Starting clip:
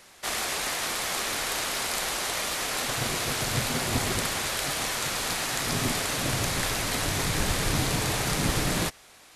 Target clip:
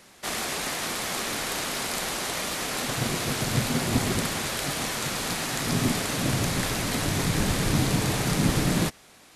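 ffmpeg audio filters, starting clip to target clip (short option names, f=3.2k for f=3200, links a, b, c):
-af "equalizer=f=200:t=o:w=1.8:g=8,volume=-1dB"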